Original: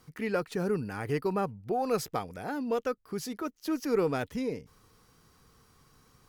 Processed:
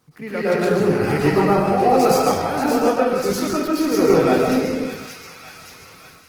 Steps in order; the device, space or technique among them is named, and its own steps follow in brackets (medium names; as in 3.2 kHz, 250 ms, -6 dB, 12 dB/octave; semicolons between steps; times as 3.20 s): 2.60–3.21 s: low-pass 2.1 kHz -> 5.3 kHz 12 dB/octave; feedback echo behind a high-pass 578 ms, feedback 58%, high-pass 1.9 kHz, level -7 dB; algorithmic reverb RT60 0.78 s, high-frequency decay 0.8×, pre-delay 95 ms, DRR 2 dB; far-field microphone of a smart speaker (reverberation RT60 0.50 s, pre-delay 106 ms, DRR -6.5 dB; high-pass 81 Hz 12 dB/octave; level rider gain up to 6.5 dB; Opus 16 kbps 48 kHz)